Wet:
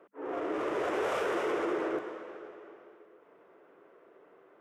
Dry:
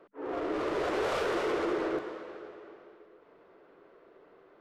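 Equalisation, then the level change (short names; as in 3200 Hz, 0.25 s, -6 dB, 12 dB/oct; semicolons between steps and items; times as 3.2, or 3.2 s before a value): HPF 200 Hz 6 dB/oct; bell 4300 Hz -11 dB 0.51 oct; 0.0 dB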